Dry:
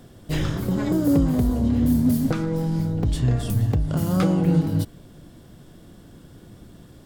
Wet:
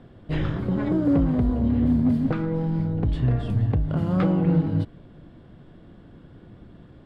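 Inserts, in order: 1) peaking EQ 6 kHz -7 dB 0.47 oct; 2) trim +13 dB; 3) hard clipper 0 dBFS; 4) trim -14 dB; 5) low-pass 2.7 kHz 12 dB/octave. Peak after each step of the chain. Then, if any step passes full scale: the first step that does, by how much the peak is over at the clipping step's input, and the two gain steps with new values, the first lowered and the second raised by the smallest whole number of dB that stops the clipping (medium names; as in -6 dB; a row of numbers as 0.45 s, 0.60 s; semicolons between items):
-9.0 dBFS, +4.0 dBFS, 0.0 dBFS, -14.0 dBFS, -13.5 dBFS; step 2, 4.0 dB; step 2 +9 dB, step 4 -10 dB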